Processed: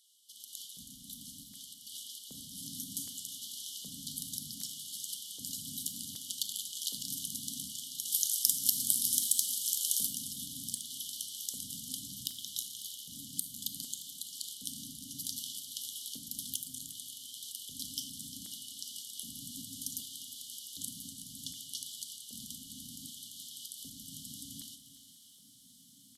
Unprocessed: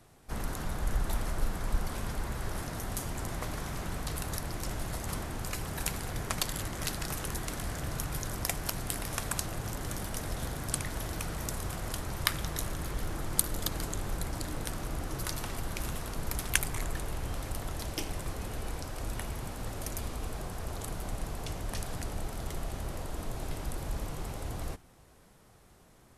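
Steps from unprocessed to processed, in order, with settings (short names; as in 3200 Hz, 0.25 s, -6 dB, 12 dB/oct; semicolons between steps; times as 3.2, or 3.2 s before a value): compressor 12:1, threshold -37 dBFS, peak gain reduction 18 dB; low shelf 340 Hz +4 dB; soft clip -23.5 dBFS, distortion -30 dB; FFT band-reject 290–2900 Hz; LFO high-pass square 0.65 Hz 470–2000 Hz; feedback echo 0.546 s, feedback 40%, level -18 dB; AGC gain up to 8 dB; 8.05–10.07 high shelf 4100 Hz +11.5 dB; reverb RT60 0.70 s, pre-delay 24 ms, DRR 9 dB; lo-fi delay 0.352 s, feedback 35%, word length 11-bit, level -14 dB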